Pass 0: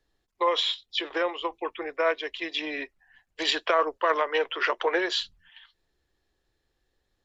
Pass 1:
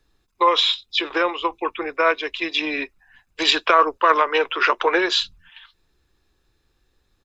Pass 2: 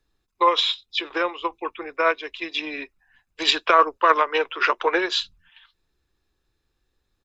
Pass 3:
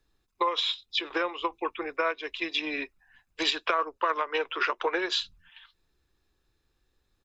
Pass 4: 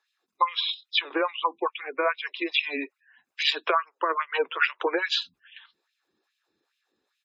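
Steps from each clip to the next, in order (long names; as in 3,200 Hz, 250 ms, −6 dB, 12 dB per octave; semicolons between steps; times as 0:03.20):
comb filter 0.8 ms, depth 39%; level +7.5 dB
expander for the loud parts 1.5 to 1, over −26 dBFS
downward compressor 4 to 1, threshold −25 dBFS, peak gain reduction 12.5 dB
auto-filter high-pass sine 2.4 Hz 210–2,700 Hz; gate on every frequency bin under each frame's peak −25 dB strong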